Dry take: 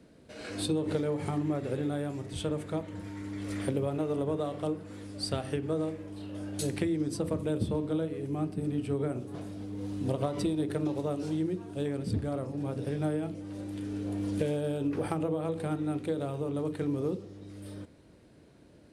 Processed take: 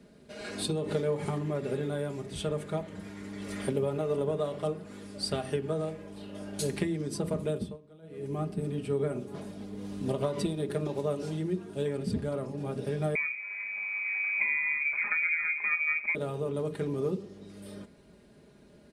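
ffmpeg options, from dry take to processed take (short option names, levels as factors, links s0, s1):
-filter_complex "[0:a]asettb=1/sr,asplit=3[s0][s1][s2];[s0]atrim=end=13.154[s3];[s1]atrim=start=13.15:end=16.15,asetpts=PTS-STARTPTS,afade=t=in:d=0.004:c=qsin,afade=t=out:st=2.996:d=0.004:c=qsin,lowpass=f=2200:t=q:w=0.5098,lowpass=f=2200:t=q:w=0.6013,lowpass=f=2200:t=q:w=0.9,lowpass=f=2200:t=q:w=2.563,afreqshift=-2600[s4];[s2]atrim=start=16.146[s5];[s3][s4]acrossfade=d=0.004:c1=hsin:c2=qsin[s6];[s6][s5]acrossfade=d=0.004:c1=qsin:c2=hsin,asplit=3[s7][s8][s9];[s7]atrim=end=7.78,asetpts=PTS-STARTPTS,afade=t=out:st=7.49:d=0.29:silence=0.0841395[s10];[s8]atrim=start=7.78:end=8.02,asetpts=PTS-STARTPTS,volume=0.0841[s11];[s9]atrim=start=8.02,asetpts=PTS-STARTPTS,afade=t=in:d=0.29:silence=0.0841395[s12];[s10][s11][s12]concat=n=3:v=0:a=1,aecho=1:1:4.9:0.62"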